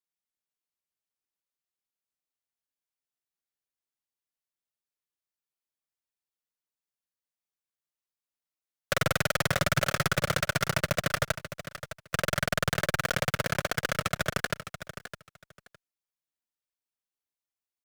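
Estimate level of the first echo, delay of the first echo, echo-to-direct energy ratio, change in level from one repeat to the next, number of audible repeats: -12.0 dB, 0.61 s, -12.0 dB, -15.0 dB, 2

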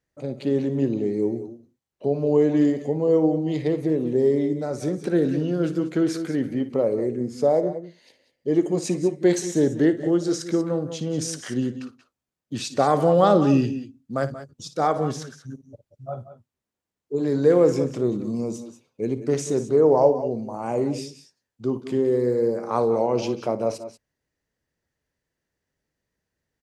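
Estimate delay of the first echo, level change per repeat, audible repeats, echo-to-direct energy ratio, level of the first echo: 57 ms, no steady repeat, 2, -10.0 dB, -14.0 dB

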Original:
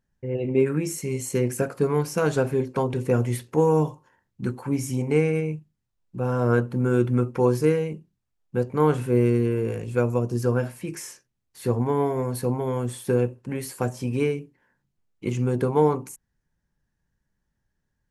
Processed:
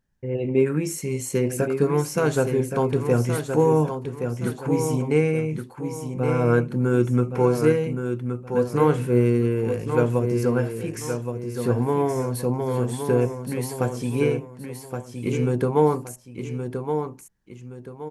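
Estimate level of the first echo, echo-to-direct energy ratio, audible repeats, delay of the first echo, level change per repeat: -7.0 dB, -6.5 dB, 2, 1.121 s, -9.5 dB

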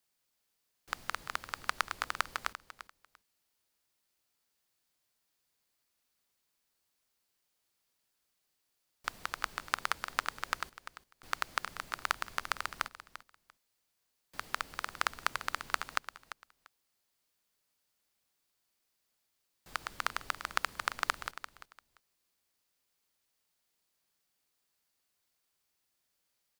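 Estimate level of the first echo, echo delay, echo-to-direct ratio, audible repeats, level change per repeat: -13.0 dB, 0.344 s, -13.0 dB, 2, -15.0 dB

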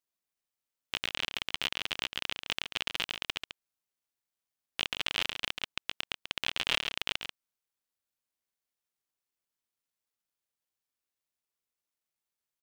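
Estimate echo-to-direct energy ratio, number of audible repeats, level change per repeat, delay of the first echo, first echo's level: -8.0 dB, 1, no steady repeat, 0.138 s, -8.0 dB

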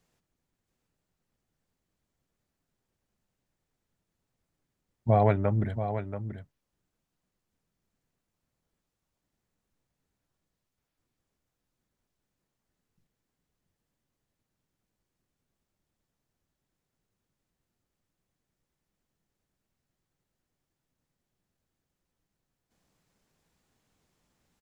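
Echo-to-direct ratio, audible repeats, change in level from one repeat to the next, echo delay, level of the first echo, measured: -9.5 dB, 1, no steady repeat, 0.682 s, -9.5 dB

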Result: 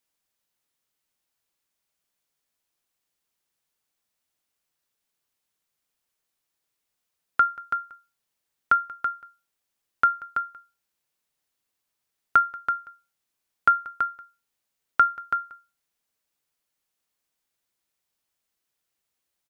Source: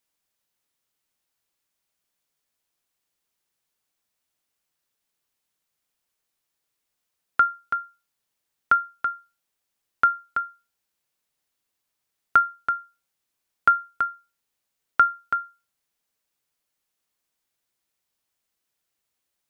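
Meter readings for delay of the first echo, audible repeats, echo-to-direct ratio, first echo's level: 0.184 s, 1, -21.0 dB, -21.0 dB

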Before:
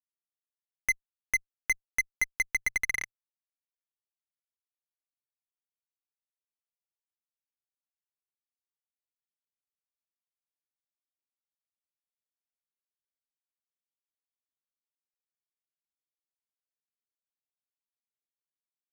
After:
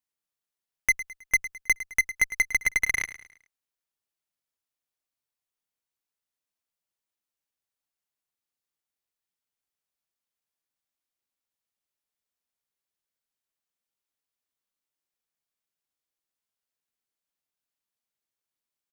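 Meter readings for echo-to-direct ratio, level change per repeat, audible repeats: -13.5 dB, -8.0 dB, 3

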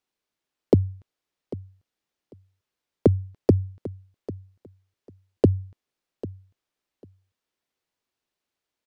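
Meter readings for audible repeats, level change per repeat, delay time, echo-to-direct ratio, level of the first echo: 2, -16.0 dB, 0.796 s, -16.5 dB, -16.5 dB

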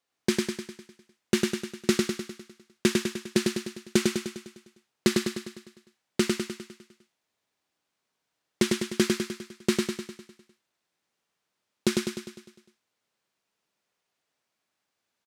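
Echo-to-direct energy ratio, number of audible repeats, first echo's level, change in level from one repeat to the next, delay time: -1.5 dB, 7, -3.0 dB, -5.0 dB, 0.101 s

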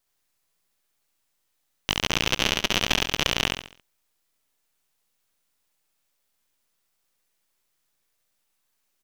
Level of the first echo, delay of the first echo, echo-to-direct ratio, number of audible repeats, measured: -3.0 dB, 69 ms, -2.5 dB, 4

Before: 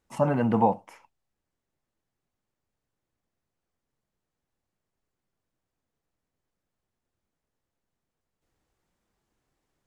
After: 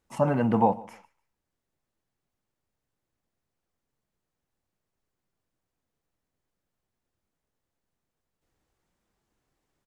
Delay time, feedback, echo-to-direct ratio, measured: 0.148 s, 25%, -21.5 dB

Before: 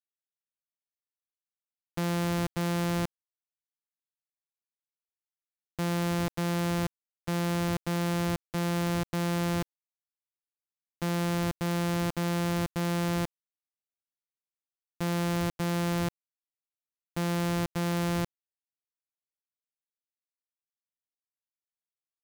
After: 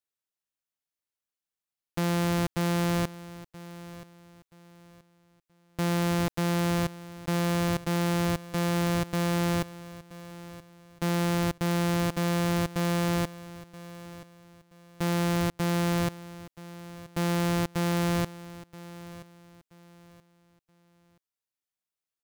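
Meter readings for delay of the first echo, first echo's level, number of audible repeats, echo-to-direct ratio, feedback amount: 0.977 s, -17.0 dB, 2, -16.5 dB, 30%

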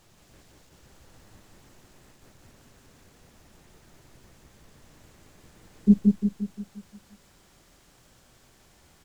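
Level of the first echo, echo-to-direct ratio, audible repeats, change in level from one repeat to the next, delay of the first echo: -3.0 dB, -1.5 dB, 6, -6.0 dB, 0.175 s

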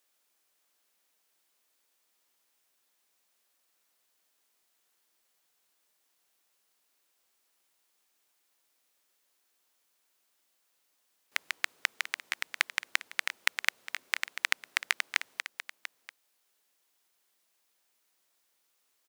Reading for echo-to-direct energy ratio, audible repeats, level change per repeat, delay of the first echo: -13.0 dB, 1, no steady repeat, 0.691 s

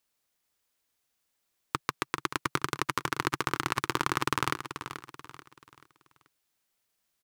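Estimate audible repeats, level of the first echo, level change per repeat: 3, -10.5 dB, -8.5 dB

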